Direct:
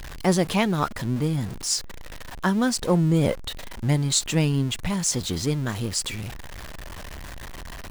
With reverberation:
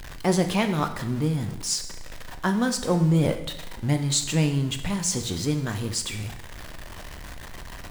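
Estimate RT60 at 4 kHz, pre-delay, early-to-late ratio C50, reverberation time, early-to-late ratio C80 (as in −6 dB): 0.80 s, 5 ms, 10.0 dB, 0.85 s, 12.5 dB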